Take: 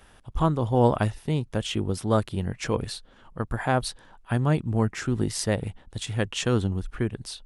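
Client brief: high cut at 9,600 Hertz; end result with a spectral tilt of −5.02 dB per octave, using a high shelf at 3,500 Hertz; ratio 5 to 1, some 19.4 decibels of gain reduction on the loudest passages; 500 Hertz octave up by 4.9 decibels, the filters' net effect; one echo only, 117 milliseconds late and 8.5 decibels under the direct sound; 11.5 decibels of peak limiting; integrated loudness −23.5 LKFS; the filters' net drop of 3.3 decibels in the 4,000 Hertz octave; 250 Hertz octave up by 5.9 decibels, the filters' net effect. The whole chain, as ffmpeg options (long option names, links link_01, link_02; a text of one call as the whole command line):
ffmpeg -i in.wav -af "lowpass=9600,equalizer=frequency=250:width_type=o:gain=6.5,equalizer=frequency=500:width_type=o:gain=4,highshelf=frequency=3500:gain=5,equalizer=frequency=4000:width_type=o:gain=-8,acompressor=threshold=-33dB:ratio=5,alimiter=level_in=6.5dB:limit=-24dB:level=0:latency=1,volume=-6.5dB,aecho=1:1:117:0.376,volume=17.5dB" out.wav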